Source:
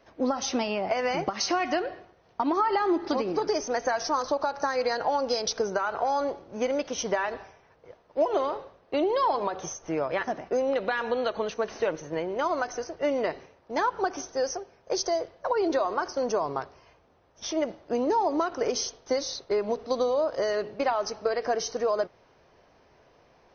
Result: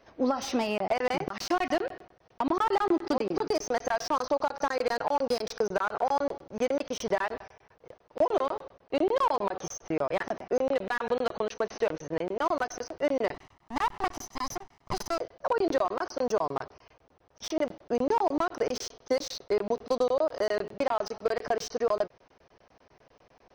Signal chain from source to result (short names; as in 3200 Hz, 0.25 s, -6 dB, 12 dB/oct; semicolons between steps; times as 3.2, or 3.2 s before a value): 13.34–15.18 minimum comb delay 1 ms; crackling interface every 0.10 s, samples 1024, zero, from 0.78; slew limiter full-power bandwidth 85 Hz